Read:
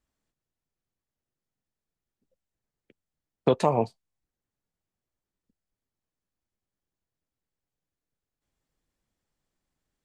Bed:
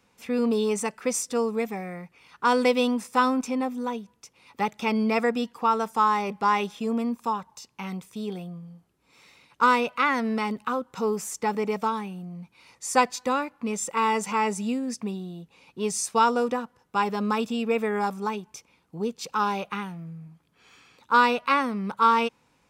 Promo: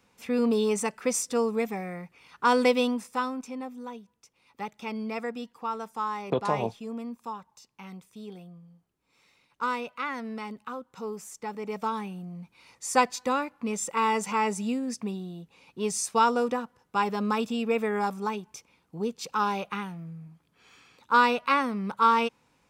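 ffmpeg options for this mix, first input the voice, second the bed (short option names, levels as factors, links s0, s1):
-filter_complex "[0:a]adelay=2850,volume=0.531[s0];[1:a]volume=2.37,afade=t=out:st=2.68:d=0.61:silence=0.354813,afade=t=in:st=11.59:d=0.44:silence=0.398107[s1];[s0][s1]amix=inputs=2:normalize=0"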